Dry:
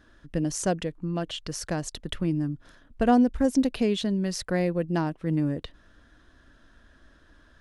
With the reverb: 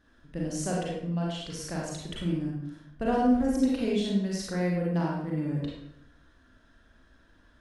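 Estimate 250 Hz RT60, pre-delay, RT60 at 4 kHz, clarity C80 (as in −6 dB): 0.95 s, 34 ms, 0.55 s, 3.5 dB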